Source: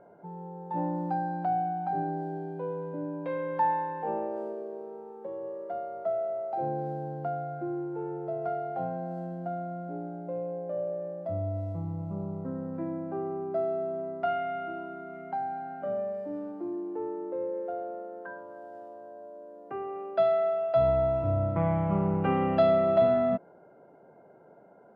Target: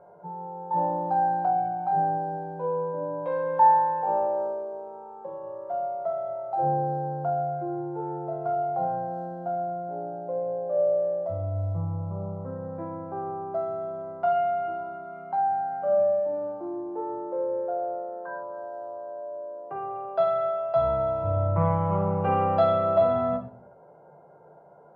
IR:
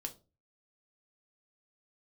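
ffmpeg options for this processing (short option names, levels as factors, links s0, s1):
-filter_complex "[0:a]equalizer=f=125:t=o:w=1:g=8,equalizer=f=250:t=o:w=1:g=-9,equalizer=f=500:t=o:w=1:g=4,equalizer=f=1000:t=o:w=1:g=9,equalizer=f=2000:t=o:w=1:g=-5[s0];[1:a]atrim=start_sample=2205,asetrate=22932,aresample=44100[s1];[s0][s1]afir=irnorm=-1:irlink=0,volume=0.708"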